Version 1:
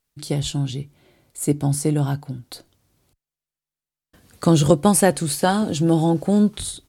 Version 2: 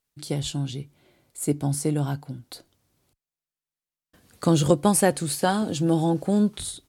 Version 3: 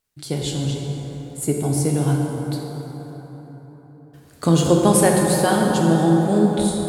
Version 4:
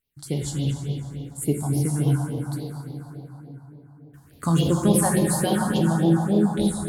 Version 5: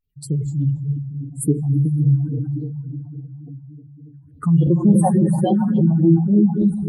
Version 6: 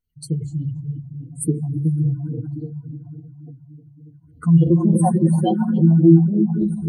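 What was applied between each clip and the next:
low-shelf EQ 91 Hz −5 dB; level −3.5 dB
dense smooth reverb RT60 4.5 s, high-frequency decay 0.45×, DRR −1 dB; level +2 dB
all-pass phaser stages 4, 3.5 Hz, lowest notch 400–1,500 Hz; level −1.5 dB
expanding power law on the bin magnitudes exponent 2.4; level +5.5 dB
EQ curve with evenly spaced ripples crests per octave 1.9, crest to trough 13 dB; level −2.5 dB

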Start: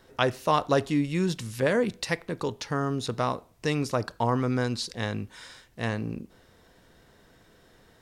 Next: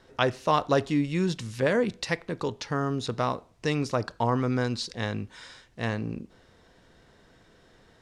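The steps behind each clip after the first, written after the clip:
low-pass filter 7,600 Hz 12 dB per octave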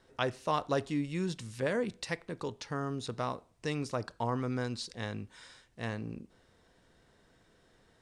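parametric band 8,900 Hz +6.5 dB 0.44 octaves
level −7.5 dB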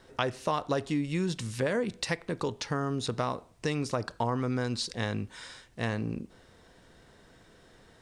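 downward compressor 3 to 1, threshold −35 dBFS, peak gain reduction 8 dB
level +8 dB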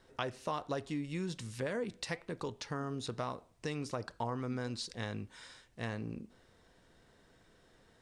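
flanger 1.2 Hz, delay 0.4 ms, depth 4.4 ms, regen +89%
level −3 dB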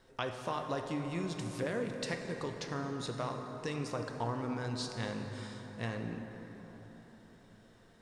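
dense smooth reverb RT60 4.8 s, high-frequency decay 0.45×, DRR 3.5 dB

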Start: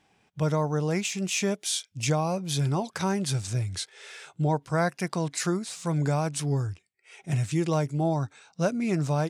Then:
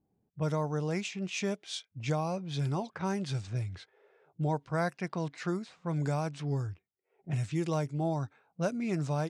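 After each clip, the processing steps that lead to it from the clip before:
low-pass that shuts in the quiet parts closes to 370 Hz, open at −21.5 dBFS
level −5.5 dB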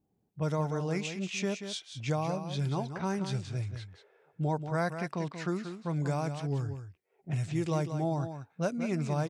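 single-tap delay 184 ms −9 dB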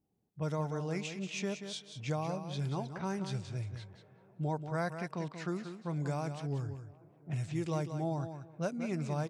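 tape delay 382 ms, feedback 87%, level −23 dB, low-pass 1,500 Hz
level −4 dB

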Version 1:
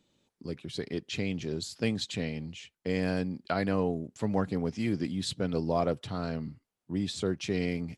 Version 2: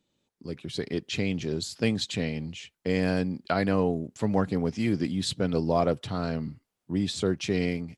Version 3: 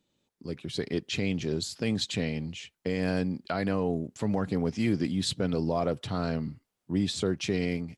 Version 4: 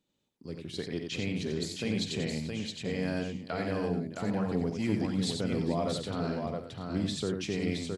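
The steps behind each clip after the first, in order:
automatic gain control gain up to 9 dB; level −5 dB
brickwall limiter −17 dBFS, peak gain reduction 6.5 dB
multi-tap delay 48/90/436/667/739/771 ms −12.5/−5.5/−17.5/−4/−15.5/−15 dB; level −5 dB

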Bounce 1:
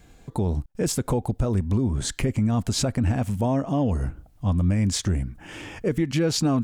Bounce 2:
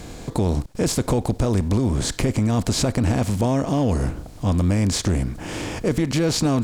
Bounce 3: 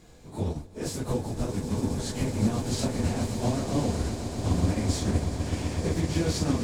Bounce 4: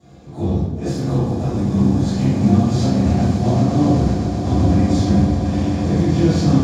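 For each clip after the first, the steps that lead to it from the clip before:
compressor on every frequency bin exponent 0.6
random phases in long frames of 100 ms; echo that builds up and dies away 127 ms, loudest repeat 8, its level −12 dB; expander for the loud parts 1.5 to 1, over −32 dBFS; level −6.5 dB
convolution reverb RT60 1.1 s, pre-delay 3 ms, DRR −12 dB; level −13 dB

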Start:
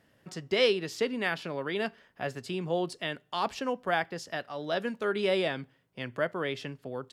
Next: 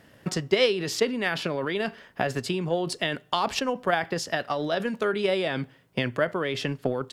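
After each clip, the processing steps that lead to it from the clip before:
in parallel at +0.5 dB: compressor whose output falls as the input rises −39 dBFS, ratio −1
on the sum: transient designer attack +7 dB, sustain 0 dB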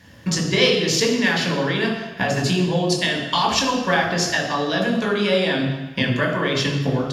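convolution reverb RT60 1.0 s, pre-delay 3 ms, DRR −1.5 dB
level +1 dB

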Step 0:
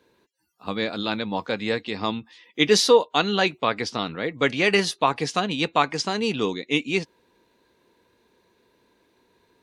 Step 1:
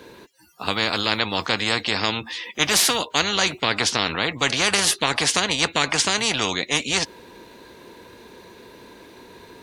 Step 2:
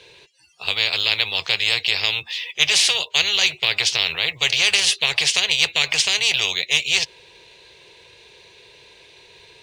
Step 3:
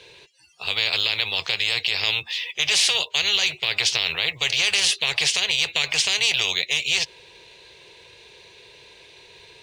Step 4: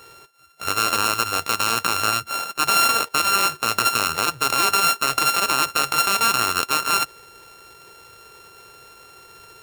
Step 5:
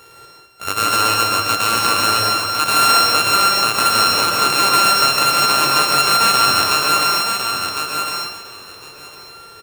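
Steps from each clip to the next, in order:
every bin compressed towards the loudest bin 4 to 1; level +2.5 dB
drawn EQ curve 150 Hz 0 dB, 250 Hz −21 dB, 400 Hz −1 dB, 660 Hz −1 dB, 1,400 Hz −5 dB, 2,600 Hz +13 dB, 9,400 Hz +3 dB, 15,000 Hz −28 dB; in parallel at −10 dB: floating-point word with a short mantissa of 2 bits; on the sum: level −8 dB
brickwall limiter −8.5 dBFS, peak gain reduction 7.5 dB
samples sorted by size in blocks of 32 samples; level +2 dB
repeating echo 1,056 ms, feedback 17%, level −6 dB; dense smooth reverb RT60 0.92 s, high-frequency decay 0.8×, pre-delay 105 ms, DRR −1.5 dB; level +1 dB

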